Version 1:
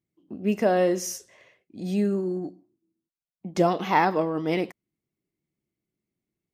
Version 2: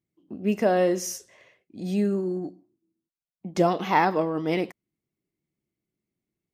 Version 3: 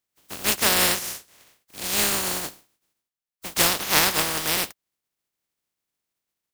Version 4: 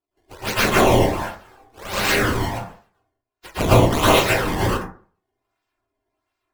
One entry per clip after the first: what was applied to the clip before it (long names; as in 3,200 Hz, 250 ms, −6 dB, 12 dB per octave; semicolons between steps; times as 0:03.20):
no processing that can be heard
compressing power law on the bin magnitudes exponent 0.16; level +1.5 dB
sample-and-hold swept by an LFO 20×, swing 160% 1.4 Hz; flanger swept by the level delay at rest 2.9 ms, full sweep at −16 dBFS; convolution reverb RT60 0.45 s, pre-delay 103 ms, DRR −10.5 dB; level −2 dB